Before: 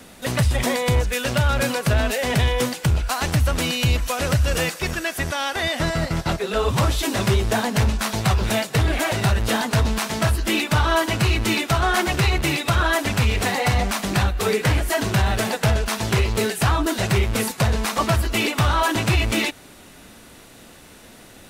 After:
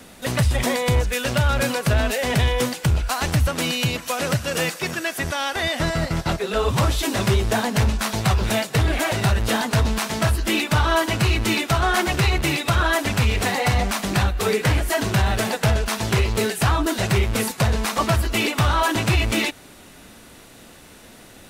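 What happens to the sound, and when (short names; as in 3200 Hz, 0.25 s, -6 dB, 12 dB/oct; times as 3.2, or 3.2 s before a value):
3.47–5.23 HPF 120 Hz 24 dB/oct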